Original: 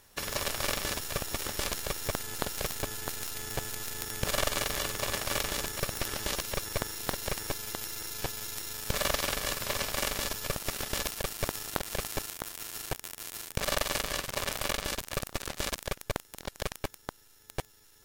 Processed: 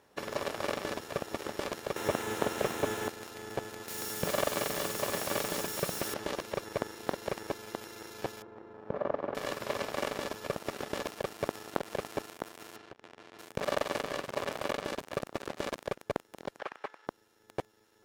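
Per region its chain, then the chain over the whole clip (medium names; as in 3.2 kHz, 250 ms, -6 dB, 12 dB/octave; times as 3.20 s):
1.96–3.08 s: jump at every zero crossing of -25 dBFS + high-pass 43 Hz + peaking EQ 4.7 kHz -7 dB 0.3 oct
3.88–6.14 s: zero-crossing glitches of -20 dBFS + peaking EQ 170 Hz +6 dB 0.41 oct
8.42–9.35 s: low-pass 1 kHz + bass shelf 68 Hz -10 dB
12.76–13.39 s: low-pass 4.1 kHz + compression 12:1, threshold -42 dBFS
16.59–17.07 s: high-pass 1.4 kHz + tilt EQ -4 dB/octave + overdrive pedal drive 26 dB, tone 2 kHz, clips at -24 dBFS
whole clip: high-pass 360 Hz 12 dB/octave; tilt EQ -4.5 dB/octave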